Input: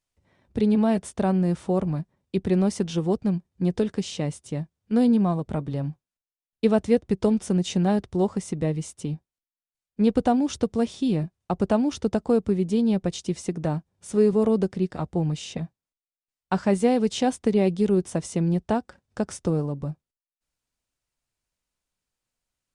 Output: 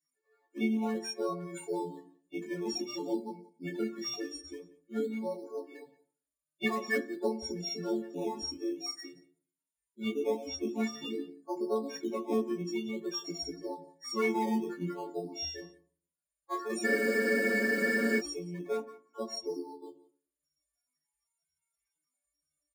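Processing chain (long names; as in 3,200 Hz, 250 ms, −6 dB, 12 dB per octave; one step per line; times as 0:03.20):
every partial snapped to a pitch grid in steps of 4 semitones
Butterworth high-pass 260 Hz 36 dB per octave
parametric band 370 Hz +9 dB 0.31 octaves
mains-hum notches 50/100/150/200/250/300/350/400/450/500 Hz
comb filter 1.9 ms, depth 49%
spectral peaks only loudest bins 16
formants moved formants −4 semitones
in parallel at −11 dB: sample-and-hold swept by an LFO 12×, swing 60% 0.5 Hz
on the sum: multi-voice chorus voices 2, 0.16 Hz, delay 20 ms, depth 3.7 ms
single-tap delay 176 ms −21.5 dB
on a send at −10.5 dB: convolution reverb RT60 0.55 s, pre-delay 3 ms
on the sum: frozen spectrum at 0:16.87, 1.32 s
level −8.5 dB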